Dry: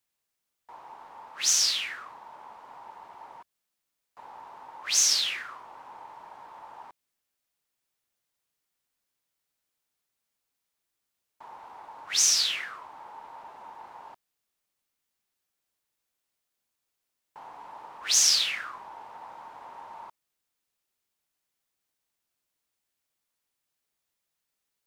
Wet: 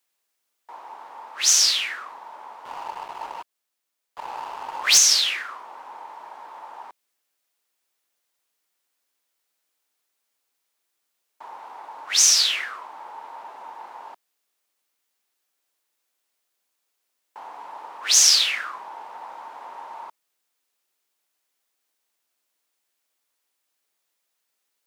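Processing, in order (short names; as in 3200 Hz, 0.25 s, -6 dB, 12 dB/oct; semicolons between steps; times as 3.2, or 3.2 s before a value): HPF 310 Hz 12 dB/oct; 2.65–4.98 sample leveller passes 2; gain +6 dB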